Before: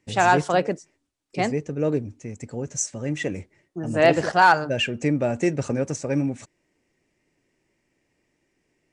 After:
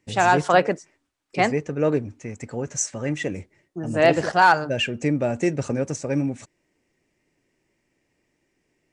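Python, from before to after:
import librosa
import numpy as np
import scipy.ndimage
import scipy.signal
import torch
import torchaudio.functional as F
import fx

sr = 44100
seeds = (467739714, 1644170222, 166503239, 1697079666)

y = fx.peak_eq(x, sr, hz=1400.0, db=7.5, octaves=2.4, at=(0.44, 3.15))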